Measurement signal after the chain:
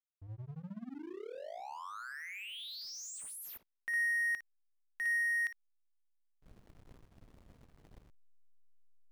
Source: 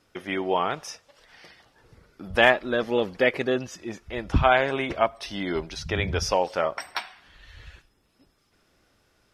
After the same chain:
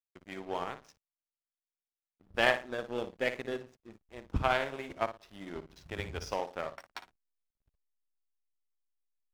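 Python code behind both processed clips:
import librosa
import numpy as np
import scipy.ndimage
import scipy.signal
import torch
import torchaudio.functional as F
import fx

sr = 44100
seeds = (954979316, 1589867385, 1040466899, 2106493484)

y = fx.room_flutter(x, sr, wall_m=9.8, rt60_s=0.45)
y = fx.backlash(y, sr, play_db=-30.5)
y = fx.power_curve(y, sr, exponent=1.4)
y = y * librosa.db_to_amplitude(-6.0)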